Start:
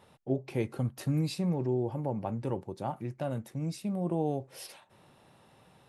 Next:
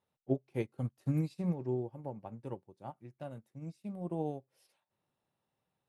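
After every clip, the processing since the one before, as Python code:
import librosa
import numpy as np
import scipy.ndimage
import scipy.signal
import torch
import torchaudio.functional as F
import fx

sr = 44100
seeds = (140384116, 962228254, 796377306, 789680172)

y = fx.upward_expand(x, sr, threshold_db=-42.0, expansion=2.5)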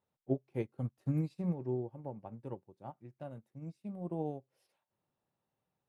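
y = fx.high_shelf(x, sr, hz=2400.0, db=-7.5)
y = y * 10.0 ** (-1.0 / 20.0)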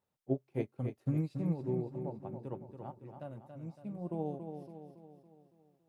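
y = fx.echo_feedback(x, sr, ms=280, feedback_pct=51, wet_db=-7.5)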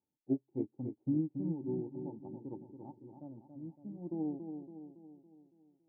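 y = fx.formant_cascade(x, sr, vowel='u')
y = y * 10.0 ** (6.5 / 20.0)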